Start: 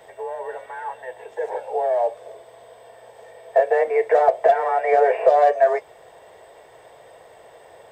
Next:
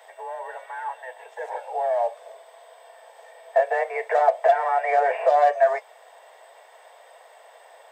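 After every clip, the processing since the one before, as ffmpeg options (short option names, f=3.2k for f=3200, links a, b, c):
-af "highpass=f=620:w=0.5412,highpass=f=620:w=1.3066"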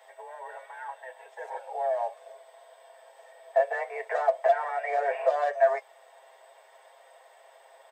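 -af "aecho=1:1:7.5:0.53,volume=-6.5dB"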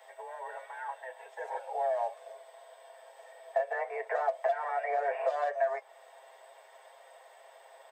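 -filter_complex "[0:a]acrossover=split=640|1900[a][b][c];[a]acompressor=threshold=-35dB:ratio=4[d];[b]acompressor=threshold=-31dB:ratio=4[e];[c]acompressor=threshold=-51dB:ratio=4[f];[d][e][f]amix=inputs=3:normalize=0"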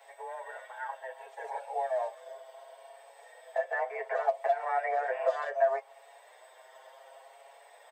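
-filter_complex "[0:a]asplit=2[a][b];[b]adelay=6.7,afreqshift=0.67[c];[a][c]amix=inputs=2:normalize=1,volume=4dB"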